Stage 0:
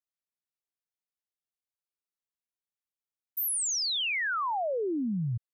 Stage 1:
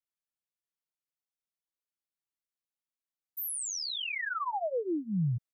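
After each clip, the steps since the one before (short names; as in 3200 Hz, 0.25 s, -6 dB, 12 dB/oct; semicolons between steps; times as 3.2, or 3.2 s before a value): dynamic EQ 260 Hz, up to -4 dB, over -43 dBFS, Q 3.6; vocal rider 0.5 s; comb 6.1 ms, depth 83%; gain -6 dB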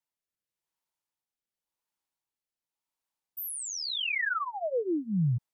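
bell 910 Hz +10 dB 0.44 oct; rotary speaker horn 0.9 Hz; gain +5 dB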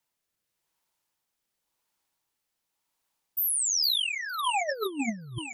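thinning echo 0.458 s, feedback 66%, high-pass 1000 Hz, level -10 dB; negative-ratio compressor -34 dBFS, ratio -0.5; gain +5.5 dB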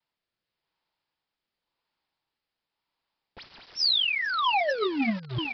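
in parallel at -7.5 dB: companded quantiser 2-bit; on the sum: vibrato 0.77 Hz 31 cents; downsampling 11025 Hz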